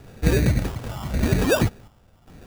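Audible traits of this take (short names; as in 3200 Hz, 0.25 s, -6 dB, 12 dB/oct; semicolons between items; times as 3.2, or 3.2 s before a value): chopped level 0.88 Hz, depth 65%, duty 65%; phasing stages 6, 0.85 Hz, lowest notch 350–2700 Hz; aliases and images of a low sample rate 2100 Hz, jitter 0%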